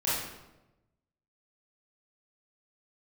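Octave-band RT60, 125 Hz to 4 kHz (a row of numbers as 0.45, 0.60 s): 1.4, 1.2, 1.1, 0.90, 0.80, 0.70 s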